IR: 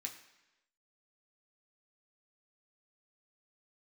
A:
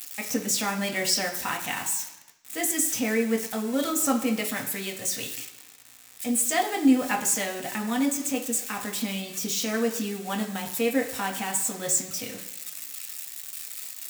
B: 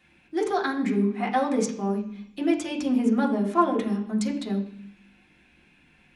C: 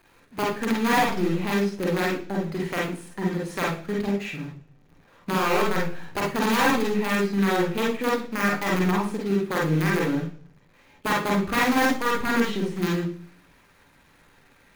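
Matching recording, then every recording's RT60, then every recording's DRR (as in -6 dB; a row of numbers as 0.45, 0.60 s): A; 1.0, 0.65, 0.45 s; 1.0, -3.0, -4.0 dB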